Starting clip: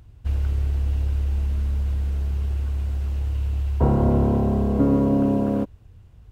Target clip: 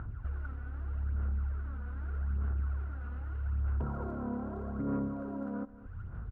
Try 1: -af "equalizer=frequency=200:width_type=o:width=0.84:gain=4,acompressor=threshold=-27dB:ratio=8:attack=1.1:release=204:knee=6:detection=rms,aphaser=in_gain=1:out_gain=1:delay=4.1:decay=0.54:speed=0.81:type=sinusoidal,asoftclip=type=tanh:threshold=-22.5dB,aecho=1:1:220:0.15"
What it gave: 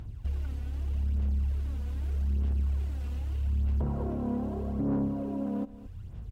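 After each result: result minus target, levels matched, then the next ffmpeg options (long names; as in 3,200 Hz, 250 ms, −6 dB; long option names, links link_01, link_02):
downward compressor: peak gain reduction −6.5 dB; 1,000 Hz band −5.0 dB
-af "equalizer=frequency=200:width_type=o:width=0.84:gain=4,acompressor=threshold=-34dB:ratio=8:attack=1.1:release=204:knee=6:detection=rms,aphaser=in_gain=1:out_gain=1:delay=4.1:decay=0.54:speed=0.81:type=sinusoidal,asoftclip=type=tanh:threshold=-22.5dB,aecho=1:1:220:0.15"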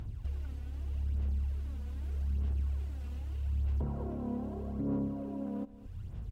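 1,000 Hz band −5.5 dB
-af "lowpass=frequency=1400:width_type=q:width=8.4,equalizer=frequency=200:width_type=o:width=0.84:gain=4,acompressor=threshold=-34dB:ratio=8:attack=1.1:release=204:knee=6:detection=rms,aphaser=in_gain=1:out_gain=1:delay=4.1:decay=0.54:speed=0.81:type=sinusoidal,asoftclip=type=tanh:threshold=-22.5dB,aecho=1:1:220:0.15"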